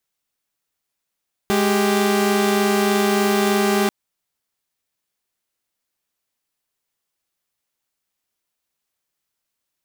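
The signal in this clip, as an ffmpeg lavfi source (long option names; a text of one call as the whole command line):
ffmpeg -f lavfi -i "aevalsrc='0.158*((2*mod(207.65*t,1)-1)+(2*mod(392*t,1)-1))':duration=2.39:sample_rate=44100" out.wav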